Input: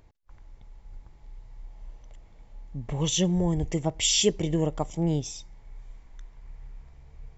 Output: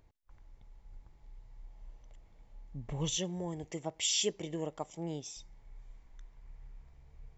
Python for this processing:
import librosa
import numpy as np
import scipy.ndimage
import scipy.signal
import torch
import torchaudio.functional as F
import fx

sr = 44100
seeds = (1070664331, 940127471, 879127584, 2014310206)

y = fx.highpass(x, sr, hz=380.0, slope=6, at=(3.17, 5.37))
y = y * 10.0 ** (-7.5 / 20.0)